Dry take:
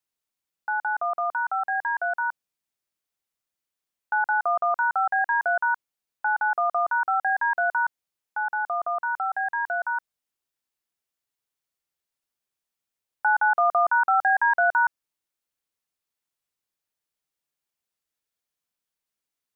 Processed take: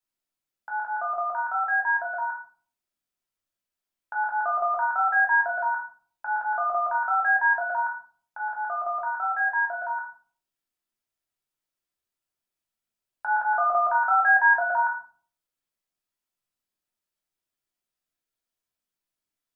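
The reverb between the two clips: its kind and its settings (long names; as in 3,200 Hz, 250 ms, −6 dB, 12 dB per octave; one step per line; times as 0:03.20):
rectangular room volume 390 cubic metres, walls furnished, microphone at 2.9 metres
level −6 dB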